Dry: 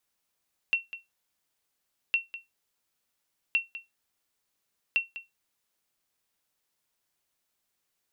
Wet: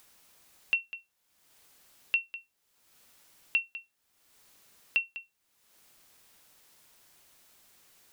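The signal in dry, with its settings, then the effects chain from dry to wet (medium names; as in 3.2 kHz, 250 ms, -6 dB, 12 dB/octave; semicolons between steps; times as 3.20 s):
sonar ping 2.72 kHz, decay 0.18 s, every 1.41 s, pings 4, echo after 0.20 s, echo -14.5 dB -16.5 dBFS
upward compressor, threshold -45 dBFS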